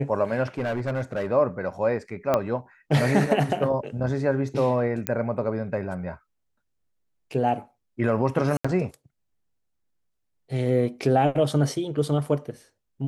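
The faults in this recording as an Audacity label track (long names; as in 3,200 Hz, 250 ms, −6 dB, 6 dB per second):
0.580000	1.270000	clipping −22.5 dBFS
2.340000	2.340000	click −9 dBFS
5.070000	5.070000	click −8 dBFS
8.570000	8.640000	drop-out 75 ms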